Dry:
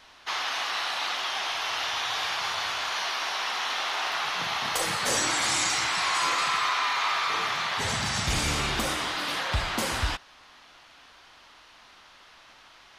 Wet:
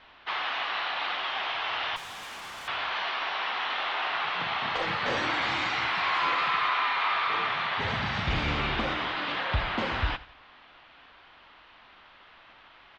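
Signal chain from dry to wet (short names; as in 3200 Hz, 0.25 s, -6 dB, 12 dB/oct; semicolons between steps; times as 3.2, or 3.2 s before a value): LPF 3400 Hz 24 dB/oct; 1.96–2.68 tube stage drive 39 dB, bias 0.75; on a send: feedback echo 86 ms, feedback 39%, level -18 dB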